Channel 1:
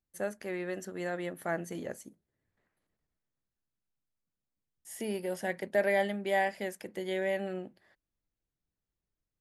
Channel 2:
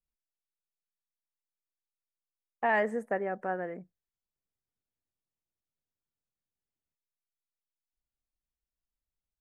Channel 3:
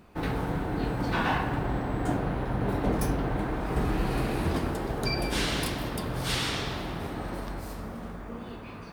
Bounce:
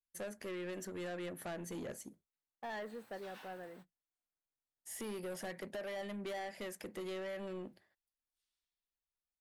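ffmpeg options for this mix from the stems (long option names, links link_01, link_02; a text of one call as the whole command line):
ffmpeg -i stem1.wav -i stem2.wav -i stem3.wav -filter_complex "[0:a]agate=range=-33dB:threshold=-55dB:ratio=3:detection=peak,acompressor=threshold=-33dB:ratio=10,volume=0.5dB[link_01];[1:a]volume=-12dB,asplit=2[link_02][link_03];[2:a]aderivative,adelay=2100,volume=-13dB[link_04];[link_03]apad=whole_len=486371[link_05];[link_04][link_05]sidechaingate=range=-42dB:threshold=-55dB:ratio=16:detection=peak[link_06];[link_01][link_02][link_06]amix=inputs=3:normalize=0,asoftclip=type=tanh:threshold=-38.5dB" out.wav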